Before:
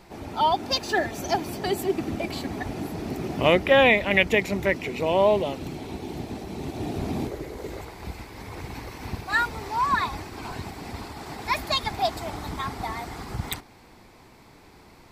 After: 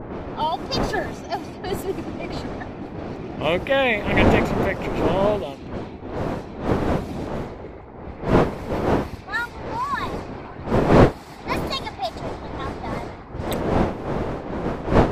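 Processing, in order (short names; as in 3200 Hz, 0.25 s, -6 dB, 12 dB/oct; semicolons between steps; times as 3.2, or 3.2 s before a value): wind noise 550 Hz -22 dBFS; low-pass opened by the level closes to 730 Hz, open at -20 dBFS; gain -2.5 dB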